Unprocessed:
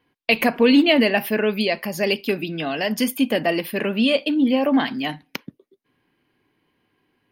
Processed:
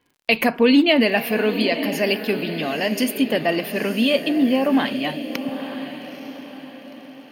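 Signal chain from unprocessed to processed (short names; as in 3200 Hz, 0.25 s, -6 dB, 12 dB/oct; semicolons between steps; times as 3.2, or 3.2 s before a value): crackle 57/s -46 dBFS; diffused feedback echo 0.903 s, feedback 43%, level -10 dB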